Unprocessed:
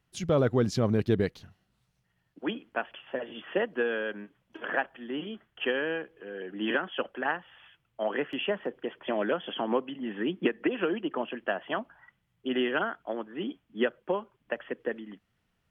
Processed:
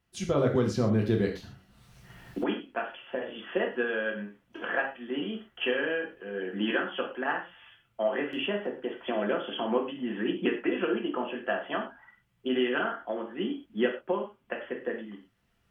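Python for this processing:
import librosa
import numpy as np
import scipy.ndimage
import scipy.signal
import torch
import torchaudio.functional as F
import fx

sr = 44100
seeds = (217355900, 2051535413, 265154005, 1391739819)

y = fx.recorder_agc(x, sr, target_db=-20.5, rise_db_per_s=6.4, max_gain_db=30)
y = fx.rev_gated(y, sr, seeds[0], gate_ms=150, shape='falling', drr_db=0.5)
y = fx.band_squash(y, sr, depth_pct=70, at=(0.55, 2.44))
y = y * librosa.db_to_amplitude(-3.0)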